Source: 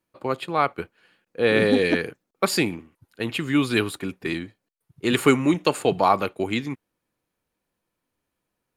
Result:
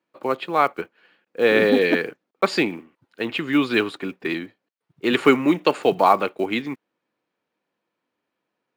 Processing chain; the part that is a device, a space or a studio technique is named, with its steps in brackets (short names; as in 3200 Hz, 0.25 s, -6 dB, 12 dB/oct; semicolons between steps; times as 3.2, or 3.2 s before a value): early digital voice recorder (BPF 230–3800 Hz; block floating point 7-bit); gain +3 dB